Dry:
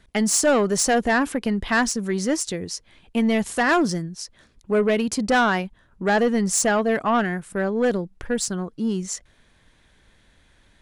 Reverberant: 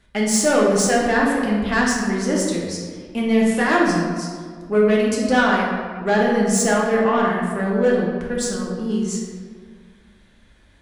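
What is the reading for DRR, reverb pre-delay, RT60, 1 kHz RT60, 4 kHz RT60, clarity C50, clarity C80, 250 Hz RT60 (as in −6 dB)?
−4.0 dB, 3 ms, 1.8 s, 1.7 s, 1.0 s, 1.0 dB, 3.0 dB, 2.2 s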